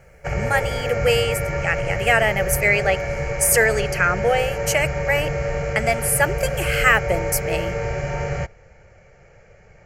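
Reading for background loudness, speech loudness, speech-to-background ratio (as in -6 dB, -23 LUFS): -25.5 LUFS, -21.0 LUFS, 4.5 dB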